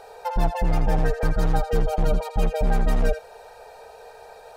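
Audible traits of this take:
background noise floor −46 dBFS
spectral slope −6.5 dB per octave

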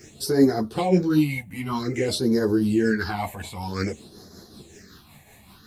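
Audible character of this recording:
a quantiser's noise floor 12 bits, dither triangular
phaser sweep stages 6, 0.52 Hz, lowest notch 360–2,600 Hz
tremolo triangle 5.3 Hz, depth 50%
a shimmering, thickened sound

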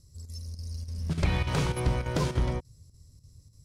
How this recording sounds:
chopped level 3.4 Hz, depth 60%, duty 85%

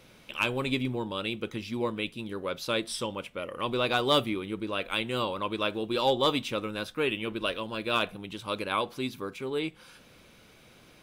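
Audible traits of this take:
background noise floor −56 dBFS
spectral slope −2.5 dB per octave

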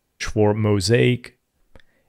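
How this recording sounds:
background noise floor −72 dBFS
spectral slope −6.0 dB per octave

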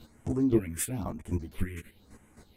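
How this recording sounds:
phaser sweep stages 4, 1 Hz, lowest notch 740–4,100 Hz
chopped level 3.8 Hz, depth 65%, duty 20%
a shimmering, thickened sound

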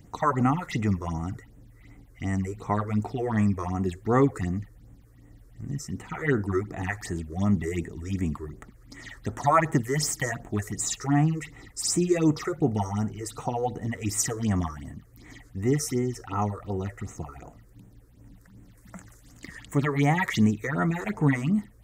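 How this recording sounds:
phaser sweep stages 6, 2.7 Hz, lowest notch 190–4,800 Hz

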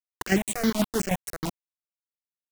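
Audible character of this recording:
chopped level 6.3 Hz, depth 65%, duty 40%
a quantiser's noise floor 6 bits, dither none
notches that jump at a steady rate 11 Hz 450–5,200 Hz

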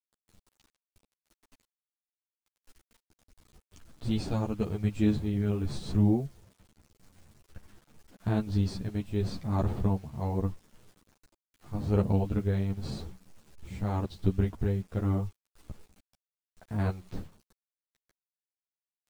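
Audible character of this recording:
tremolo triangle 0.85 Hz, depth 55%
a quantiser's noise floor 10 bits, dither none
a shimmering, thickened sound

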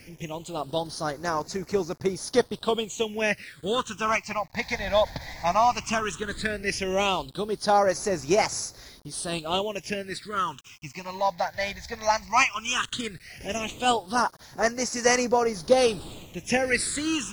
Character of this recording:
a quantiser's noise floor 8 bits, dither none
phaser sweep stages 8, 0.15 Hz, lowest notch 370–3,100 Hz
AAC

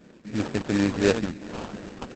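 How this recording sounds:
phaser sweep stages 2, 2.9 Hz, lowest notch 690–4,200 Hz
aliases and images of a low sample rate 2,100 Hz, jitter 20%
Opus

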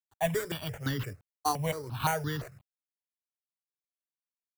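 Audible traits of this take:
a quantiser's noise floor 10 bits, dither none
sample-and-hold tremolo
aliases and images of a low sample rate 5,200 Hz, jitter 0%
notches that jump at a steady rate 5.8 Hz 600–2,400 Hz

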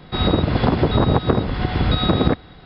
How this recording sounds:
background noise floor −44 dBFS
spectral slope −5.5 dB per octave

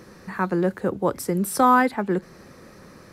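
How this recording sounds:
background noise floor −48 dBFS
spectral slope −4.5 dB per octave

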